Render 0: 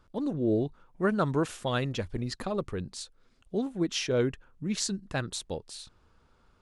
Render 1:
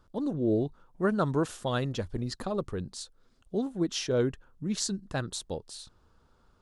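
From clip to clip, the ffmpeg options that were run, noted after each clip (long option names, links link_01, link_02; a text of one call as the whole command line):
ffmpeg -i in.wav -af "equalizer=frequency=2300:width_type=o:width=0.69:gain=-7" out.wav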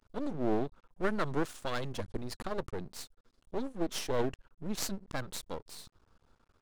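ffmpeg -i in.wav -af "aeval=exprs='max(val(0),0)':channel_layout=same" out.wav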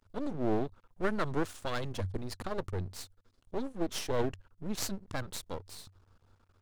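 ffmpeg -i in.wav -af "equalizer=frequency=94:width=5.9:gain=14.5" out.wav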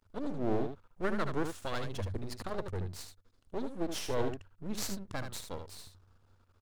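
ffmpeg -i in.wav -af "aecho=1:1:76:0.447,volume=-2dB" out.wav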